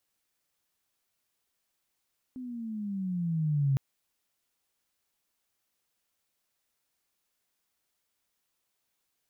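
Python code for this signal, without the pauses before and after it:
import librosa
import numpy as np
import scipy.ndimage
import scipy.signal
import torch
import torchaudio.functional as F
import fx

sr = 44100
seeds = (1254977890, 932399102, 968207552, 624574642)

y = fx.riser_tone(sr, length_s=1.41, level_db=-22.0, wave='sine', hz=259.0, rise_st=-11.5, swell_db=15)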